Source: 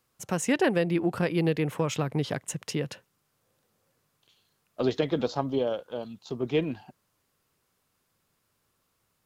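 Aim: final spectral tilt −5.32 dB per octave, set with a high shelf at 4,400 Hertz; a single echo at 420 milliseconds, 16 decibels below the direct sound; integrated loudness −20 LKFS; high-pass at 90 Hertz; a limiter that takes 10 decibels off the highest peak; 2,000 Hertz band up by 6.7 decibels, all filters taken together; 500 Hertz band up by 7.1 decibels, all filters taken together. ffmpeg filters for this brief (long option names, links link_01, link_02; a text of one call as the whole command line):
ffmpeg -i in.wav -af "highpass=90,equalizer=frequency=500:width_type=o:gain=8,equalizer=frequency=2000:width_type=o:gain=8.5,highshelf=frequency=4400:gain=-4,alimiter=limit=-16.5dB:level=0:latency=1,aecho=1:1:420:0.158,volume=8dB" out.wav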